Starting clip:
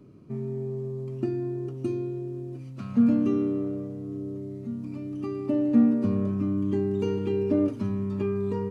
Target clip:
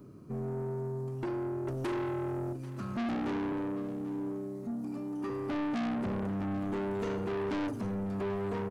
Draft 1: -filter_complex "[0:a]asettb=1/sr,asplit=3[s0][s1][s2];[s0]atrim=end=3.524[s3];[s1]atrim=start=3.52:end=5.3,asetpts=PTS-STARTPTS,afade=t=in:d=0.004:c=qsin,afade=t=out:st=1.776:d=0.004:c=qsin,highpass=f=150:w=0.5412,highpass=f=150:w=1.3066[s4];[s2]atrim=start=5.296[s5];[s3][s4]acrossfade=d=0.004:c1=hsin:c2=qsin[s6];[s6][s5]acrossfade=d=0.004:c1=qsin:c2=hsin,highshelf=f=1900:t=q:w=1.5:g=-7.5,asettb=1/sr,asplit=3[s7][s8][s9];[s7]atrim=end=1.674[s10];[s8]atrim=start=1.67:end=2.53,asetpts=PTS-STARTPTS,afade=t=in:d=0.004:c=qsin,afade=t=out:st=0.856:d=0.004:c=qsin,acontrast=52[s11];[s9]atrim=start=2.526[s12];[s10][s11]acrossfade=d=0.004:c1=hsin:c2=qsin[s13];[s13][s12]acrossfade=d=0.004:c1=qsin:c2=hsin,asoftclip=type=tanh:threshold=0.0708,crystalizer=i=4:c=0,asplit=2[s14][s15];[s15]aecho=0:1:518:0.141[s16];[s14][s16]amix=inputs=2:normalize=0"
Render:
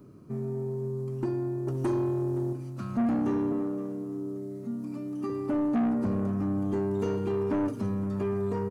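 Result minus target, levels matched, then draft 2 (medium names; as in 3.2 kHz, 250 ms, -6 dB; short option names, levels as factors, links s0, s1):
echo 270 ms early; saturation: distortion -5 dB
-filter_complex "[0:a]asettb=1/sr,asplit=3[s0][s1][s2];[s0]atrim=end=3.524[s3];[s1]atrim=start=3.52:end=5.3,asetpts=PTS-STARTPTS,afade=t=in:d=0.004:c=qsin,afade=t=out:st=1.776:d=0.004:c=qsin,highpass=f=150:w=0.5412,highpass=f=150:w=1.3066[s4];[s2]atrim=start=5.296[s5];[s3][s4]acrossfade=d=0.004:c1=hsin:c2=qsin[s6];[s6][s5]acrossfade=d=0.004:c1=qsin:c2=hsin,highshelf=f=1900:t=q:w=1.5:g=-7.5,asettb=1/sr,asplit=3[s7][s8][s9];[s7]atrim=end=1.674[s10];[s8]atrim=start=1.67:end=2.53,asetpts=PTS-STARTPTS,afade=t=in:d=0.004:c=qsin,afade=t=out:st=0.856:d=0.004:c=qsin,acontrast=52[s11];[s9]atrim=start=2.526[s12];[s10][s11]acrossfade=d=0.004:c1=hsin:c2=qsin[s13];[s13][s12]acrossfade=d=0.004:c1=qsin:c2=hsin,asoftclip=type=tanh:threshold=0.0266,crystalizer=i=4:c=0,asplit=2[s14][s15];[s15]aecho=0:1:788:0.141[s16];[s14][s16]amix=inputs=2:normalize=0"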